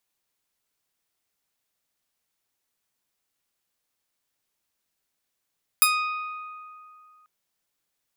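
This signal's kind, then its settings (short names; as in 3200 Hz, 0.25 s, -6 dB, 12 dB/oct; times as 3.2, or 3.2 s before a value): plucked string D#6, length 1.44 s, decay 2.54 s, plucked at 0.31, bright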